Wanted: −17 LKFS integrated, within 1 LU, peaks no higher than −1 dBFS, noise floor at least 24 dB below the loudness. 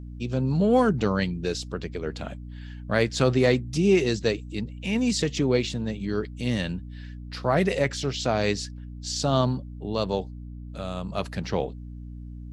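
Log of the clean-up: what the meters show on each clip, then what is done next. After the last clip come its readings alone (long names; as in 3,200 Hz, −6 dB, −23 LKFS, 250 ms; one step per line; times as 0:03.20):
mains hum 60 Hz; hum harmonics up to 300 Hz; level of the hum −36 dBFS; integrated loudness −26.0 LKFS; sample peak −6.5 dBFS; target loudness −17.0 LKFS
→ mains-hum notches 60/120/180/240/300 Hz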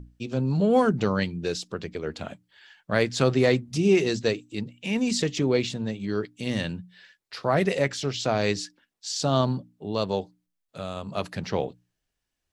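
mains hum none found; integrated loudness −26.5 LKFS; sample peak −6.5 dBFS; target loudness −17.0 LKFS
→ level +9.5 dB
brickwall limiter −1 dBFS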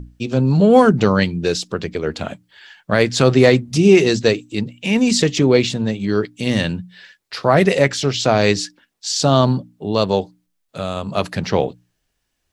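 integrated loudness −17.0 LKFS; sample peak −1.0 dBFS; background noise floor −72 dBFS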